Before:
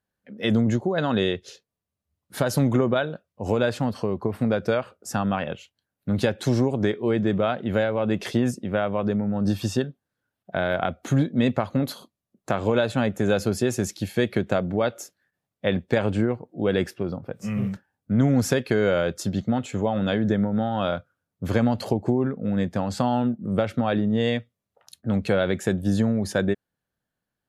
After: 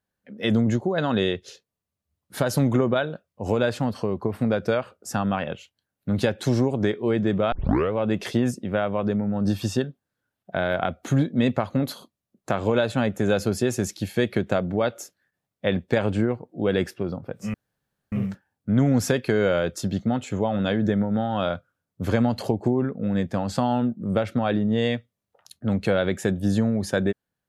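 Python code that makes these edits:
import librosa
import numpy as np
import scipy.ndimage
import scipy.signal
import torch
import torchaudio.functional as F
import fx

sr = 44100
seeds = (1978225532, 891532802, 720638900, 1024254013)

y = fx.edit(x, sr, fx.tape_start(start_s=7.52, length_s=0.41),
    fx.insert_room_tone(at_s=17.54, length_s=0.58), tone=tone)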